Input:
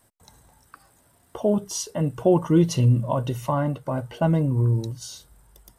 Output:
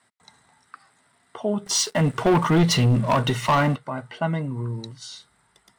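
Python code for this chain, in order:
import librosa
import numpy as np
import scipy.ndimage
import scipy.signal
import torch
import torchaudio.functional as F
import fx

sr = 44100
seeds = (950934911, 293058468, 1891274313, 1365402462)

y = fx.cabinet(x, sr, low_hz=190.0, low_slope=12, high_hz=8600.0, hz=(320.0, 530.0, 1300.0, 2000.0, 3900.0, 6400.0), db=(-8, -9, 5, 9, 5, -6))
y = fx.leveller(y, sr, passes=3, at=(1.66, 3.76))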